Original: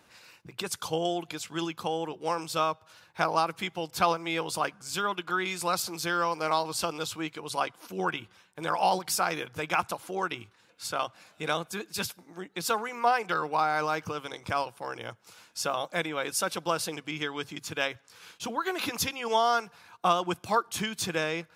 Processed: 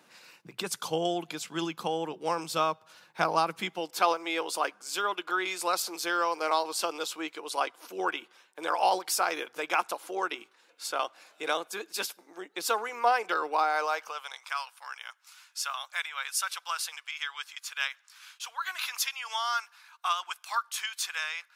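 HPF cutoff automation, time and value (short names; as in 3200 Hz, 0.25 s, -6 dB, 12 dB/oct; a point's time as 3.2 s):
HPF 24 dB/oct
3.57 s 150 Hz
4.03 s 310 Hz
13.58 s 310 Hz
14.54 s 1100 Hz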